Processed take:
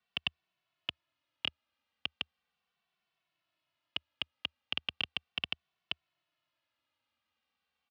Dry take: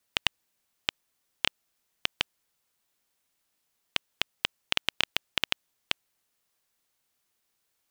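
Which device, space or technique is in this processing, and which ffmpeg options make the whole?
barber-pole flanger into a guitar amplifier: -filter_complex "[0:a]asplit=2[link_01][link_02];[link_02]adelay=2.2,afreqshift=-0.37[link_03];[link_01][link_03]amix=inputs=2:normalize=1,asoftclip=type=tanh:threshold=-22.5dB,highpass=75,equalizer=frequency=77:width_type=q:width=4:gain=4,equalizer=frequency=410:width_type=q:width=4:gain=-8,equalizer=frequency=680:width_type=q:width=4:gain=3,equalizer=frequency=1200:width_type=q:width=4:gain=4,equalizer=frequency=2800:width_type=q:width=4:gain=5,lowpass=frequency=4100:width=0.5412,lowpass=frequency=4100:width=1.3066"

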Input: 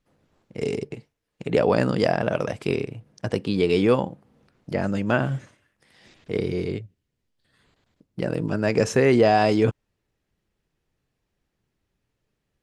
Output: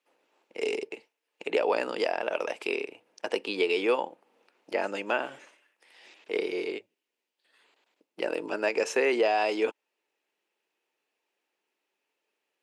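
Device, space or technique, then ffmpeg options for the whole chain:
laptop speaker: -af "highpass=frequency=350:width=0.5412,highpass=frequency=350:width=1.3066,equalizer=frequency=890:width_type=o:width=0.2:gain=6.5,equalizer=frequency=2600:width_type=o:width=0.49:gain=8,alimiter=limit=-13dB:level=0:latency=1:release=421,volume=-2dB"

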